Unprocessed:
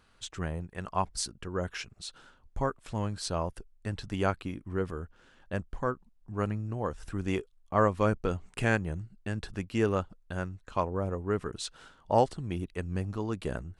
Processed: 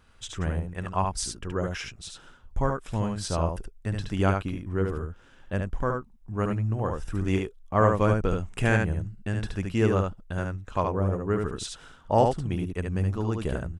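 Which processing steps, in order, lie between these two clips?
bass shelf 120 Hz +6.5 dB; band-stop 4.3 kHz, Q 9.8; delay 73 ms -4 dB; trim +2 dB

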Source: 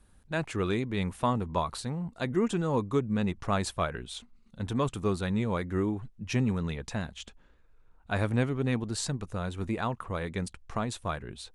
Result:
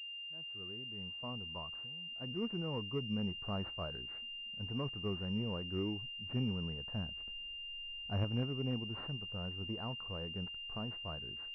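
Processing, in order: fade-in on the opening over 3.15 s; harmonic-percussive split percussive -6 dB; 1.71–2.11 s: compression 12:1, threshold -47 dBFS, peak gain reduction 12.5 dB; 6.94–8.24 s: tilt EQ -1.5 dB/octave; class-D stage that switches slowly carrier 2.8 kHz; trim -8 dB

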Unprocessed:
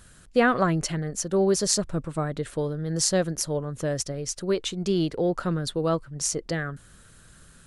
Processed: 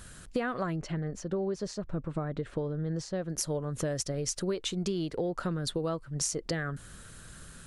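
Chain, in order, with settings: compression 10:1, threshold -32 dBFS, peak gain reduction 17 dB; 0.76–3.30 s: tape spacing loss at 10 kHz 21 dB; trim +3.5 dB

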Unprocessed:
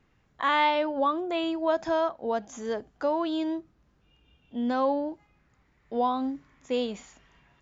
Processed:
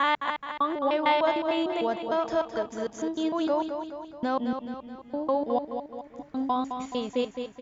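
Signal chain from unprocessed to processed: slices played last to first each 151 ms, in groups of 4; feedback delay 213 ms, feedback 52%, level -7.5 dB

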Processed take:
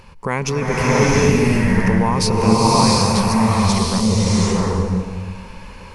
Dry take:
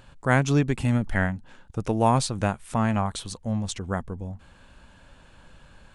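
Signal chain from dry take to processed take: rippled EQ curve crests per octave 0.84, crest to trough 11 dB; in parallel at +3 dB: compressor with a negative ratio -26 dBFS, ratio -0.5; on the sum: swelling reverb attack 720 ms, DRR -7 dB; trim -3 dB

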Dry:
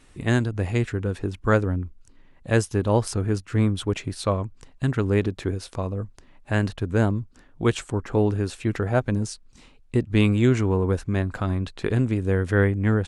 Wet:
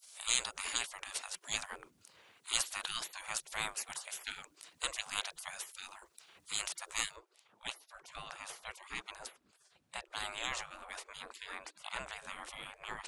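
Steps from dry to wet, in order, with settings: hum notches 50/100/150/200/250/300 Hz; spectral gate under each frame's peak -30 dB weak; treble shelf 3.6 kHz +10 dB, from 7.16 s -3 dB; trim +3.5 dB

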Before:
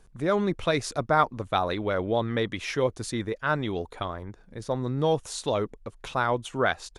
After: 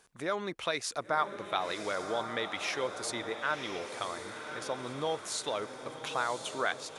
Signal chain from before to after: high-pass 1 kHz 6 dB/octave; compression 1.5:1, threshold -43 dBFS, peak gain reduction 9 dB; on a send: echo that smears into a reverb 1052 ms, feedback 51%, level -8 dB; on the sum: trim +3.5 dB

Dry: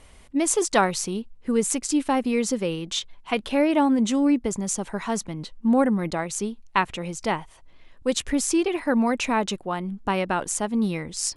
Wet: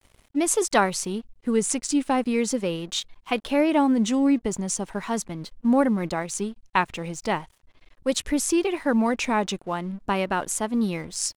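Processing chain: crossover distortion -49.5 dBFS; vibrato 0.4 Hz 55 cents

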